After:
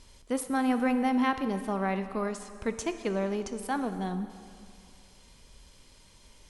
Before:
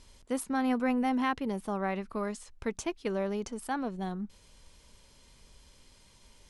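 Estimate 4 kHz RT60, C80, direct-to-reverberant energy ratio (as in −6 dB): 2.1 s, 11.5 dB, 9.5 dB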